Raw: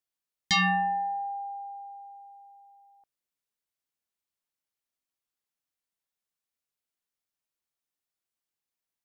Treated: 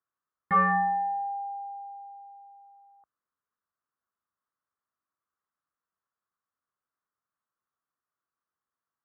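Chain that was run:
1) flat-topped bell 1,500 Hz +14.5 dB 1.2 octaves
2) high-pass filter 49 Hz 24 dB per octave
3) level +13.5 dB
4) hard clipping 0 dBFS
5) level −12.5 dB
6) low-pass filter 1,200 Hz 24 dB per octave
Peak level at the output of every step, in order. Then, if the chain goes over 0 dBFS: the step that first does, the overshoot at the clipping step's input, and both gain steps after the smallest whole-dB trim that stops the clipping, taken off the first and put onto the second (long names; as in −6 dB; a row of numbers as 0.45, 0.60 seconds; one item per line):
−4.5, −4.5, +9.0, 0.0, −12.5, −14.0 dBFS
step 3, 9.0 dB
step 3 +4.5 dB, step 5 −3.5 dB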